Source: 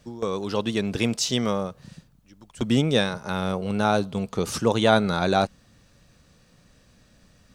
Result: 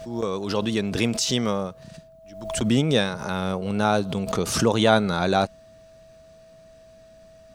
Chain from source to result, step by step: whine 650 Hz -48 dBFS; backwards sustainer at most 67 dB/s

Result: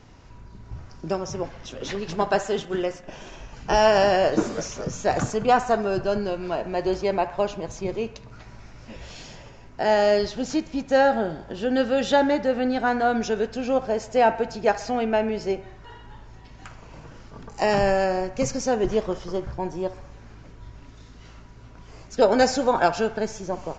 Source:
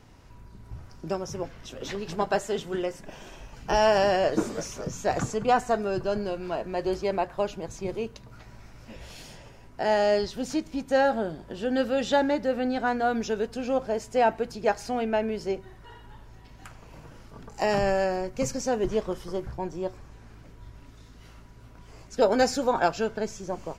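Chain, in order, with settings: downsampling 16000 Hz; 2.65–3.08 gate -38 dBFS, range -7 dB; band-limited delay 64 ms, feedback 60%, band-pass 1300 Hz, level -13 dB; gain +3.5 dB

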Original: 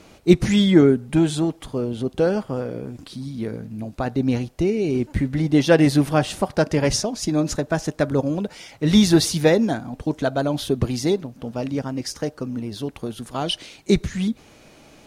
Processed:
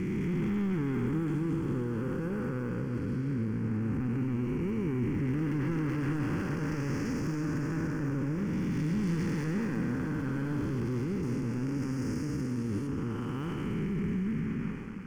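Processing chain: time blur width 0.657 s; LPF 4200 Hz 12 dB/oct, from 11.23 s 7800 Hz, from 12.87 s 2100 Hz; sample leveller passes 3; limiter -25 dBFS, peak gain reduction 13 dB; fixed phaser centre 1600 Hz, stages 4; diffused feedback echo 0.668 s, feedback 49%, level -11.5 dB

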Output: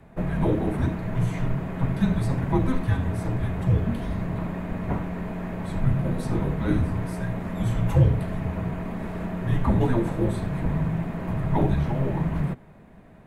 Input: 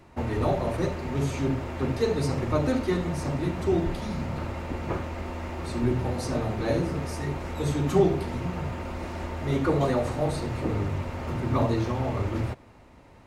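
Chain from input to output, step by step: frequency shift -260 Hz; bell 5400 Hz -14 dB 1.3 oct; gain +3 dB

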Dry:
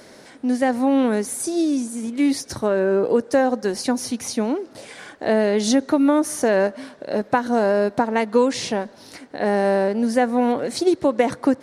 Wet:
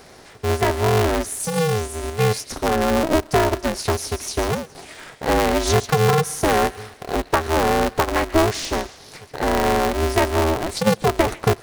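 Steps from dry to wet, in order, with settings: thin delay 0.139 s, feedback 44%, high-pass 2200 Hz, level -10 dB; polarity switched at an audio rate 160 Hz

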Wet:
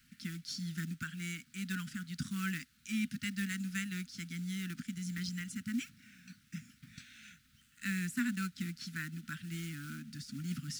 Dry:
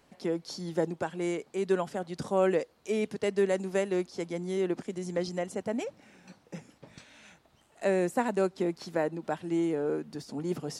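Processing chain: companded quantiser 6-bit; Chebyshev band-stop 250–1400 Hz, order 4

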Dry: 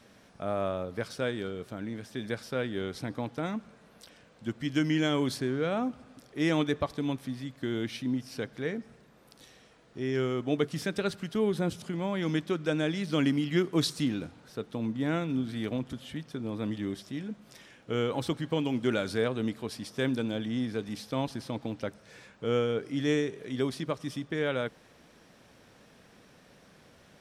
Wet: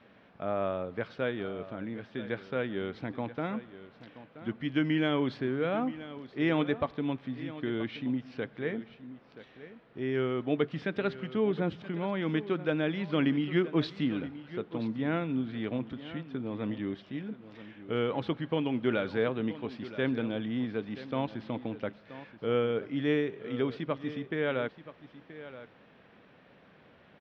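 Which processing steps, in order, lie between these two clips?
LPF 3200 Hz 24 dB/oct; low shelf 72 Hz -11 dB; on a send: echo 0.977 s -15 dB

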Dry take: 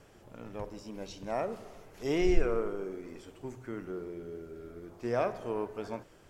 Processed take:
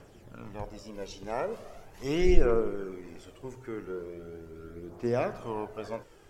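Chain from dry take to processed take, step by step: phaser 0.4 Hz, delay 2.5 ms, feedback 43%; gain +1 dB

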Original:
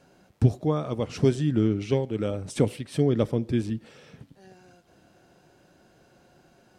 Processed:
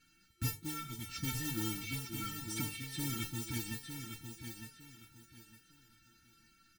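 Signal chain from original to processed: FFT band-reject 350–1300 Hz; modulation noise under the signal 15 dB; notches 50/100/150 Hz; resonator 450 Hz, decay 0.15 s, harmonics all, mix 100%; in parallel at +1.5 dB: limiter -38 dBFS, peak gain reduction 9 dB; on the sum: feedback echo 0.907 s, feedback 27%, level -7.5 dB; gain +3 dB

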